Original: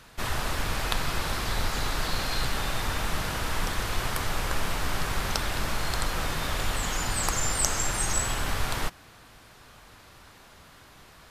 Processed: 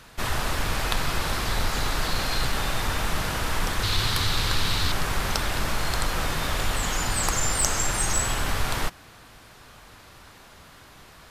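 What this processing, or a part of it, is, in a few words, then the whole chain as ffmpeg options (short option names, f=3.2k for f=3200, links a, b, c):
parallel distortion: -filter_complex "[0:a]asettb=1/sr,asplit=3[a][b][c];[a]atrim=end=3.834[d];[b]atrim=start=3.83:end=4.92,asetpts=PTS-STARTPTS,afade=t=in:d=0.004:c=qsin,afade=t=out:st=1.086:d=0.004:c=qsin,equalizer=f=100:t=o:w=0.67:g=7,equalizer=f=630:t=o:w=0.67:g=-5,equalizer=f=4k:t=o:w=0.67:g=12[e];[c]atrim=start=4.916[f];[d][e]acrossfade=d=0.004:c1=hsin:c2=qsin[g];[g][f]acrossfade=d=0.004:c1=qsin:c2=hsin,asplit=2[h][i];[i]asoftclip=type=hard:threshold=-21.5dB,volume=-8dB[j];[h][j]amix=inputs=2:normalize=0"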